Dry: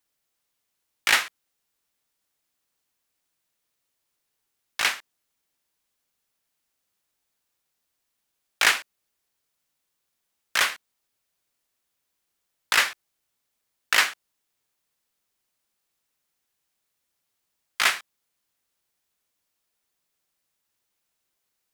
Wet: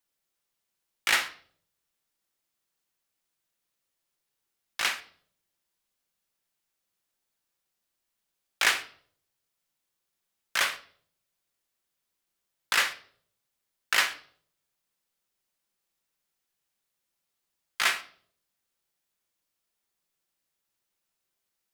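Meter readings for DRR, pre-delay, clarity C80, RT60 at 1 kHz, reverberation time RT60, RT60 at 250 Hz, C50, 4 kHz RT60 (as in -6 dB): 7.5 dB, 5 ms, 19.0 dB, 0.45 s, 0.55 s, 0.70 s, 14.5 dB, 0.45 s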